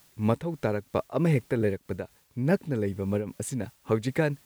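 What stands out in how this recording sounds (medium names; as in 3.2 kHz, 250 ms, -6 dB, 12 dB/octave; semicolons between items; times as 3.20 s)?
a quantiser's noise floor 10-bit, dither triangular; random flutter of the level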